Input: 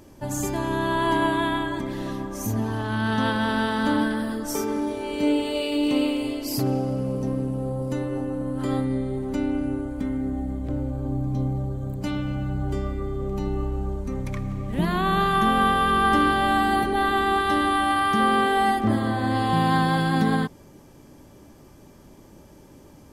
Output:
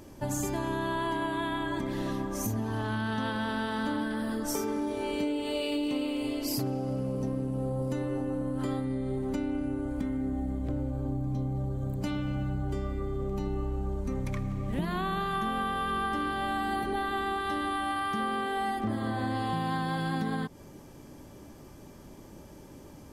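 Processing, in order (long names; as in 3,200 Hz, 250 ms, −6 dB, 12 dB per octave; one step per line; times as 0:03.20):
downward compressor 6 to 1, threshold −28 dBFS, peak gain reduction 12 dB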